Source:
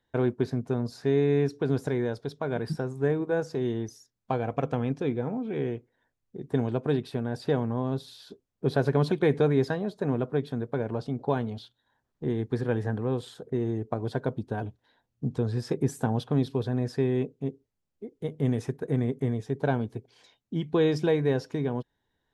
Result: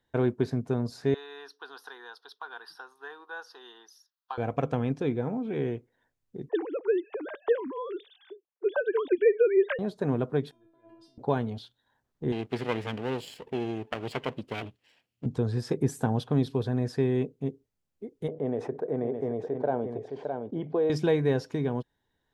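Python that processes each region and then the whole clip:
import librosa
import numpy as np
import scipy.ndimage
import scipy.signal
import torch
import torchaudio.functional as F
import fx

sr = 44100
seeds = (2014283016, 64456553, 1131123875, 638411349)

y = fx.chain(x, sr, fx.highpass(hz=630.0, slope=24),
    fx.fixed_phaser(hz=2200.0, stages=6), at=(1.14, 4.38))
y = fx.chain(y, sr, fx.sine_speech(),
    fx.peak_eq(hz=190.0, db=-13.5, octaves=0.53), at=(6.49, 9.79))
y = fx.chain(y, sr, fx.highpass(hz=53.0, slope=12),
    fx.over_compress(threshold_db=-38.0, ratio=-1.0),
    fx.stiff_resonator(f0_hz=330.0, decay_s=0.5, stiffness=0.002), at=(10.51, 11.18))
y = fx.chain(y, sr, fx.lower_of_two(delay_ms=0.4),
    fx.highpass(hz=230.0, slope=6),
    fx.peak_eq(hz=2900.0, db=11.0, octaves=0.87), at=(12.32, 15.26))
y = fx.chain(y, sr, fx.bandpass_q(hz=590.0, q=1.8),
    fx.echo_single(ms=615, db=-11.0),
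    fx.env_flatten(amount_pct=50), at=(18.28, 20.9))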